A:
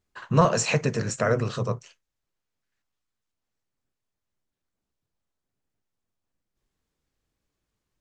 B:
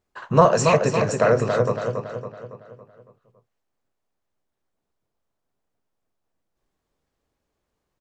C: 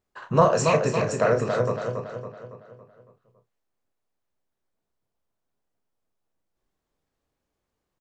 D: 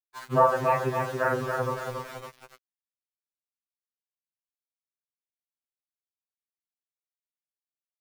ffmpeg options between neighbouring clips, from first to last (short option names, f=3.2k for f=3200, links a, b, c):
-filter_complex "[0:a]equalizer=f=660:t=o:w=2.2:g=8,asplit=2[a][b];[b]adelay=279,lowpass=f=4.4k:p=1,volume=-5dB,asplit=2[c][d];[d]adelay=279,lowpass=f=4.4k:p=1,volume=0.5,asplit=2[e][f];[f]adelay=279,lowpass=f=4.4k:p=1,volume=0.5,asplit=2[g][h];[h]adelay=279,lowpass=f=4.4k:p=1,volume=0.5,asplit=2[i][j];[j]adelay=279,lowpass=f=4.4k:p=1,volume=0.5,asplit=2[k][l];[l]adelay=279,lowpass=f=4.4k:p=1,volume=0.5[m];[c][e][g][i][k][m]amix=inputs=6:normalize=0[n];[a][n]amix=inputs=2:normalize=0,volume=-1dB"
-filter_complex "[0:a]asplit=2[a][b];[b]adelay=32,volume=-9dB[c];[a][c]amix=inputs=2:normalize=0,volume=-3.5dB"
-af "highpass=f=150:w=0.5412,highpass=f=150:w=1.3066,equalizer=f=240:t=q:w=4:g=-5,equalizer=f=590:t=q:w=4:g=-4,equalizer=f=880:t=q:w=4:g=6,equalizer=f=1.6k:t=q:w=4:g=7,lowpass=f=2.2k:w=0.5412,lowpass=f=2.2k:w=1.3066,aeval=exprs='val(0)*gte(abs(val(0)),0.0178)':c=same,afftfilt=real='re*2.45*eq(mod(b,6),0)':imag='im*2.45*eq(mod(b,6),0)':win_size=2048:overlap=0.75"